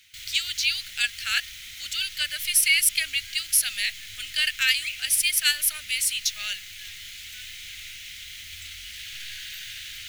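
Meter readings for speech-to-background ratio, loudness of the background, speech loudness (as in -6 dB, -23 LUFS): 14.5 dB, -37.5 LUFS, -23.0 LUFS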